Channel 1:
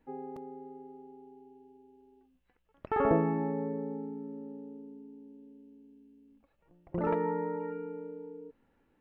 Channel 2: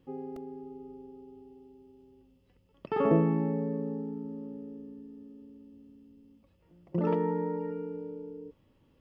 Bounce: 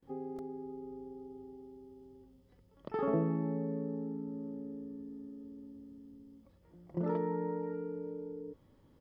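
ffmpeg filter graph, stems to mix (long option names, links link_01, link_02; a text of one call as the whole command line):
ffmpeg -i stem1.wav -i stem2.wav -filter_complex "[0:a]volume=-15.5dB[link_01];[1:a]equalizer=frequency=2700:width_type=o:width=0.33:gain=-13,adelay=25,volume=2dB[link_02];[link_01][link_02]amix=inputs=2:normalize=0,acompressor=threshold=-44dB:ratio=1.5" out.wav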